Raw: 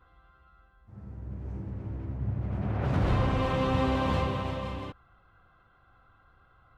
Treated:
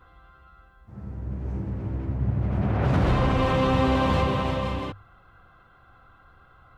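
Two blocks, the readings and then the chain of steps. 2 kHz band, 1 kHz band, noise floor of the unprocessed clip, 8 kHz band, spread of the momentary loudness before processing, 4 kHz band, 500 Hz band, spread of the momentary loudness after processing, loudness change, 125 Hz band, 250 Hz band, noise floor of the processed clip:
+6.0 dB, +6.0 dB, -63 dBFS, n/a, 15 LU, +6.0 dB, +5.5 dB, 13 LU, +5.0 dB, +5.0 dB, +6.0 dB, -56 dBFS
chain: notches 50/100 Hz; in parallel at +2.5 dB: limiter -22.5 dBFS, peak gain reduction 8 dB

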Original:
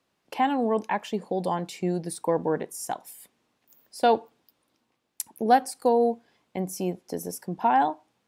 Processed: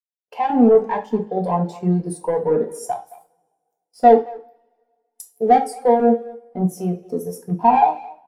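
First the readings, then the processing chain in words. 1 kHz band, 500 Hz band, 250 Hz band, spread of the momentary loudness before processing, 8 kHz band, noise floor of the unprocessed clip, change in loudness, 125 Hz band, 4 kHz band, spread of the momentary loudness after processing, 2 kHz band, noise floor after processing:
+7.0 dB, +8.5 dB, +9.0 dB, 14 LU, -1.5 dB, -75 dBFS, +8.0 dB, +10.0 dB, n/a, 14 LU, -0.5 dB, -80 dBFS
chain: LFO notch square 2 Hz 260–2500 Hz; sample leveller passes 3; speakerphone echo 0.22 s, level -10 dB; two-slope reverb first 0.45 s, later 2.8 s, from -22 dB, DRR 1.5 dB; spectral expander 1.5:1; gain -1 dB

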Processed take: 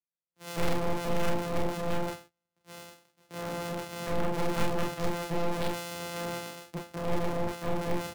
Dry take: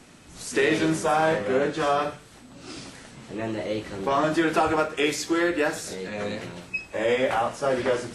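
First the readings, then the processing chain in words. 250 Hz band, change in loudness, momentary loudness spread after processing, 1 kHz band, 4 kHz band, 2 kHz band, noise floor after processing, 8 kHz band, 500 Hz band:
-7.5 dB, -8.5 dB, 13 LU, -9.0 dB, -7.0 dB, -11.5 dB, under -85 dBFS, -8.0 dB, -9.0 dB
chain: sample sorter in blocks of 256 samples; gate -42 dBFS, range -28 dB; HPF 110 Hz 12 dB/oct; wavefolder -21.5 dBFS; early reflections 31 ms -4 dB, 45 ms -5 dB; three-band expander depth 70%; gain -1.5 dB

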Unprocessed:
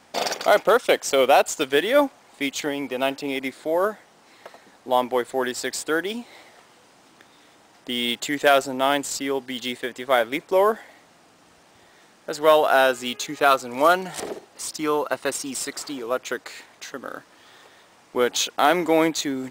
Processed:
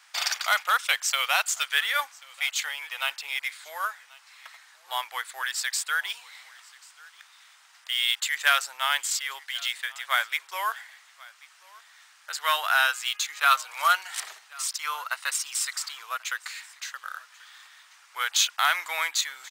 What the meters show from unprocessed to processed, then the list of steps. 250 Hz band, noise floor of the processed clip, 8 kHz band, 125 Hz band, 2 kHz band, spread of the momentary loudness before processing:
under -40 dB, -57 dBFS, +1.5 dB, under -40 dB, +1.0 dB, 14 LU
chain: HPF 1200 Hz 24 dB/oct; on a send: echo 1.086 s -23.5 dB; on the sum: gain +1.5 dB

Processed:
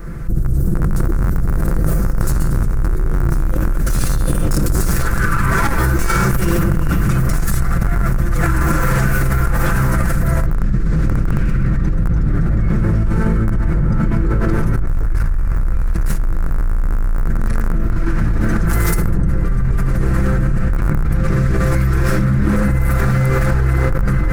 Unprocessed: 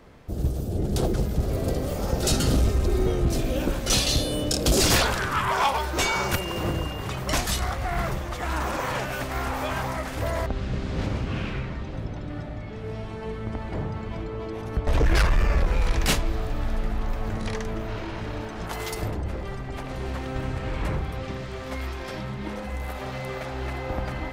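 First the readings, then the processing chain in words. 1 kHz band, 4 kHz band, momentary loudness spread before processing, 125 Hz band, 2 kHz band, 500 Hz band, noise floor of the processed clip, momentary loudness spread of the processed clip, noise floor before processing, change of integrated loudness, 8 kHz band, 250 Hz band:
+4.5 dB, -7.0 dB, 11 LU, +12.5 dB, +7.0 dB, +3.5 dB, -17 dBFS, 5 LU, -35 dBFS, +9.5 dB, +1.0 dB, +10.5 dB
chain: minimum comb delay 5.9 ms; passive tone stack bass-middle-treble 10-0-1; notches 60/120/180/240/300/360/420/480/540 Hz; AGC gain up to 9 dB; in parallel at -5 dB: Schmitt trigger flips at -26 dBFS; on the sum: EQ curve 780 Hz 0 dB, 1400 Hz +11 dB, 3200 Hz -15 dB, 10000 Hz +1 dB; fast leveller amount 100%; gain -1 dB

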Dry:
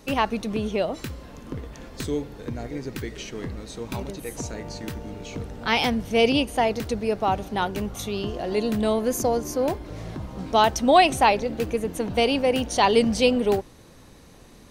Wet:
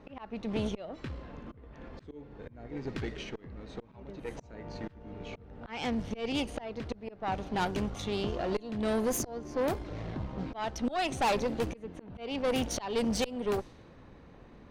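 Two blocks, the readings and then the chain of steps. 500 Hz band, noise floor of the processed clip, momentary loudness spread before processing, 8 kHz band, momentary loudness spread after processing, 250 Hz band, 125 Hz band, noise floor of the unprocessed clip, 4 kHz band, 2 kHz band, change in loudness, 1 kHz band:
-11.0 dB, -54 dBFS, 16 LU, -7.5 dB, 17 LU, -8.5 dB, -7.0 dB, -49 dBFS, -11.5 dB, -11.5 dB, -10.5 dB, -13.0 dB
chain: auto swell 0.422 s; low-pass opened by the level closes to 1900 Hz, open at -20 dBFS; tube stage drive 24 dB, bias 0.6

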